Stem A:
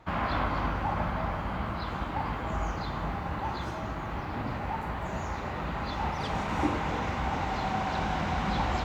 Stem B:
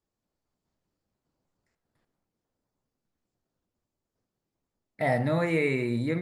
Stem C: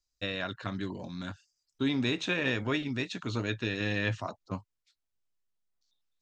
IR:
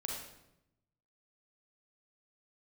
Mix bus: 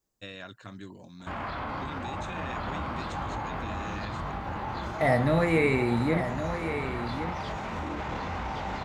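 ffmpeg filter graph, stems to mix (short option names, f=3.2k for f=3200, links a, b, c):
-filter_complex "[0:a]highshelf=f=8.8k:g=-5,bandreject=f=50:t=h:w=6,bandreject=f=100:t=h:w=6,bandreject=f=150:t=h:w=6,bandreject=f=200:t=h:w=6,bandreject=f=250:t=h:w=6,bandreject=f=300:t=h:w=6,flanger=delay=20:depth=7.4:speed=0.95,adelay=1200,volume=3dB,asplit=2[a][b];[b]volume=-8dB[c];[1:a]volume=2dB,asplit=2[d][e];[e]volume=-9dB[f];[2:a]aexciter=amount=2.3:drive=9.3:freq=6.9k,volume=-8dB[g];[a][g]amix=inputs=2:normalize=0,alimiter=level_in=3dB:limit=-24dB:level=0:latency=1:release=19,volume=-3dB,volume=0dB[h];[c][f]amix=inputs=2:normalize=0,aecho=0:1:1117:1[i];[d][h][i]amix=inputs=3:normalize=0"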